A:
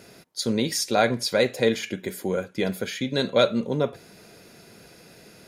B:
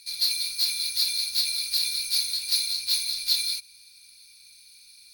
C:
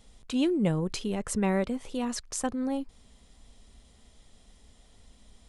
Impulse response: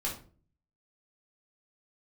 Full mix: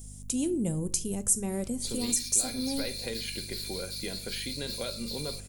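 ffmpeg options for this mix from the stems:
-filter_complex "[0:a]equalizer=frequency=2900:width_type=o:width=0.77:gain=7.5,acompressor=threshold=-24dB:ratio=6,adelay=1450,volume=-10.5dB,asplit=2[link_01][link_02];[link_02]volume=-14.5dB[link_03];[1:a]alimiter=limit=-17.5dB:level=0:latency=1,adelay=1800,volume=-11dB[link_04];[2:a]equalizer=frequency=1400:width_type=o:width=2.3:gain=-13,aeval=exprs='val(0)+0.00501*(sin(2*PI*50*n/s)+sin(2*PI*2*50*n/s)/2+sin(2*PI*3*50*n/s)/3+sin(2*PI*4*50*n/s)/4+sin(2*PI*5*50*n/s)/5)':channel_layout=same,aexciter=amount=7.9:drive=5.2:freq=5700,volume=1dB,asplit=2[link_05][link_06];[link_06]volume=-18dB[link_07];[link_01][link_05]amix=inputs=2:normalize=0,acompressor=threshold=-29dB:ratio=2.5,volume=0dB[link_08];[3:a]atrim=start_sample=2205[link_09];[link_03][link_07]amix=inputs=2:normalize=0[link_10];[link_10][link_09]afir=irnorm=-1:irlink=0[link_11];[link_04][link_08][link_11]amix=inputs=3:normalize=0"

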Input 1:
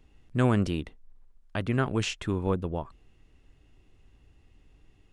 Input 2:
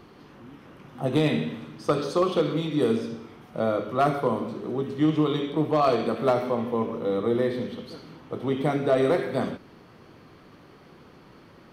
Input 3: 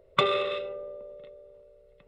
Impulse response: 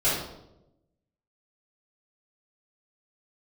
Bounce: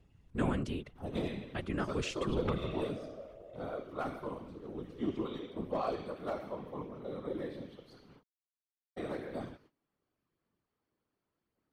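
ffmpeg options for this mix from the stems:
-filter_complex "[0:a]volume=-2dB[link_01];[1:a]agate=range=-20dB:threshold=-45dB:ratio=16:detection=peak,volume=-9.5dB,asplit=3[link_02][link_03][link_04];[link_02]atrim=end=8.23,asetpts=PTS-STARTPTS,afade=type=out:start_time=8.226:duration=0.004:curve=hsin[link_05];[link_03]atrim=start=8.23:end=8.97,asetpts=PTS-STARTPTS,volume=0[link_06];[link_04]atrim=start=8.97,asetpts=PTS-STARTPTS,afade=type=in:duration=0.004:curve=hsin[link_07];[link_05][link_06][link_07]concat=n=3:v=0:a=1[link_08];[2:a]acompressor=threshold=-33dB:ratio=6,adelay=2300,volume=-2.5dB[link_09];[link_01][link_08][link_09]amix=inputs=3:normalize=0,aphaser=in_gain=1:out_gain=1:delay=3.7:decay=0.27:speed=0.86:type=sinusoidal,afftfilt=real='hypot(re,im)*cos(2*PI*random(0))':imag='hypot(re,im)*sin(2*PI*random(1))':win_size=512:overlap=0.75"

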